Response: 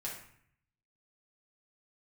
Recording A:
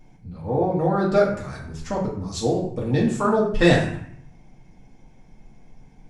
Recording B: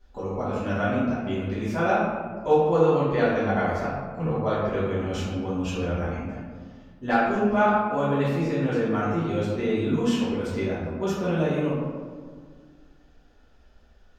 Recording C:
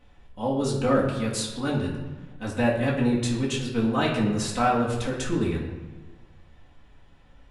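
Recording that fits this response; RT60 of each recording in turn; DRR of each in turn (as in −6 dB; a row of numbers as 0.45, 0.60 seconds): A; 0.60, 1.8, 1.3 seconds; −5.0, −11.5, −5.5 decibels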